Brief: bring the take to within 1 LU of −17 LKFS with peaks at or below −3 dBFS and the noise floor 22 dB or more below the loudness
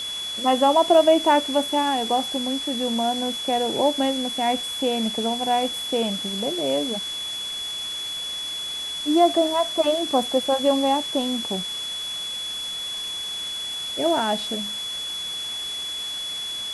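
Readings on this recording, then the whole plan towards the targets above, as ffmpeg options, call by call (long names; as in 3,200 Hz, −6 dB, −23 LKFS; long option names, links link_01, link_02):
interfering tone 3,400 Hz; level of the tone −28 dBFS; background noise floor −31 dBFS; target noise floor −45 dBFS; integrated loudness −23.0 LKFS; sample peak −5.5 dBFS; target loudness −17.0 LKFS
→ -af "bandreject=frequency=3400:width=30"
-af "afftdn=noise_reduction=14:noise_floor=-31"
-af "volume=6dB,alimiter=limit=-3dB:level=0:latency=1"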